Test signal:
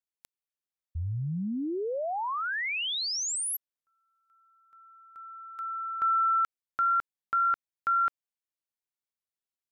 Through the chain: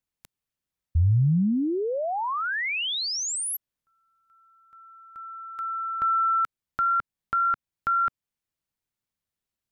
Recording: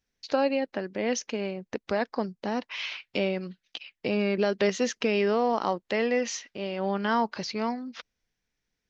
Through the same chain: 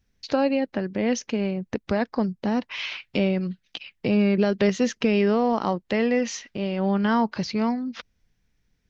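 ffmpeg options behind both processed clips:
ffmpeg -i in.wav -filter_complex "[0:a]bass=frequency=250:gain=11,treble=frequency=4000:gain=-2,asplit=2[link_01][link_02];[link_02]acompressor=threshold=-34dB:ratio=6:attack=5.3:release=354:knee=6:detection=rms,volume=-1.5dB[link_03];[link_01][link_03]amix=inputs=2:normalize=0" out.wav

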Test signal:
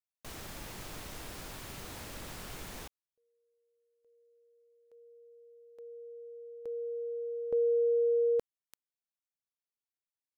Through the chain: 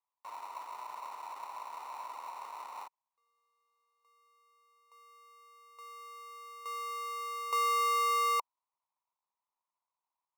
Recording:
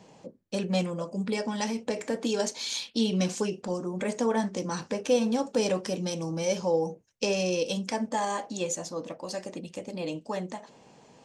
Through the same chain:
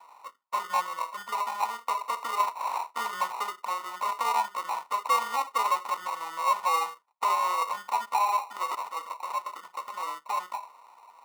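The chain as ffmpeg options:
ffmpeg -i in.wav -af "acrusher=samples=27:mix=1:aa=0.000001,highpass=frequency=980:width_type=q:width=8.2,acontrast=34,volume=-9dB" out.wav

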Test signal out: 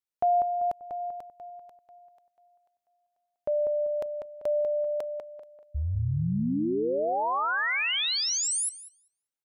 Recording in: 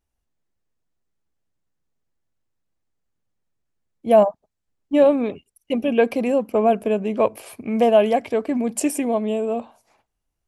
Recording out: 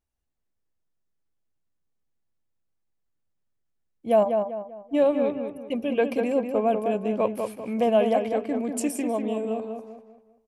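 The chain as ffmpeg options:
ffmpeg -i in.wav -filter_complex "[0:a]asplit=2[link_01][link_02];[link_02]adelay=195,lowpass=frequency=2300:poles=1,volume=-5dB,asplit=2[link_03][link_04];[link_04]adelay=195,lowpass=frequency=2300:poles=1,volume=0.38,asplit=2[link_05][link_06];[link_06]adelay=195,lowpass=frequency=2300:poles=1,volume=0.38,asplit=2[link_07][link_08];[link_08]adelay=195,lowpass=frequency=2300:poles=1,volume=0.38,asplit=2[link_09][link_10];[link_10]adelay=195,lowpass=frequency=2300:poles=1,volume=0.38[link_11];[link_01][link_03][link_05][link_07][link_09][link_11]amix=inputs=6:normalize=0,volume=-6dB" out.wav

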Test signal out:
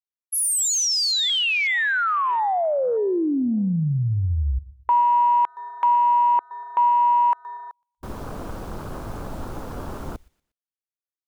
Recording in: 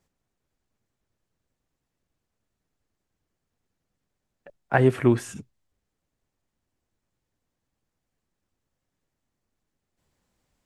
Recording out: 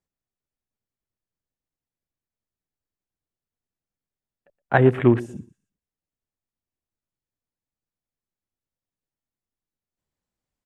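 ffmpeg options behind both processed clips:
ffmpeg -i in.wav -af "aecho=1:1:119|238|357:0.112|0.0438|0.0171,afwtdn=0.0158,volume=3dB" out.wav

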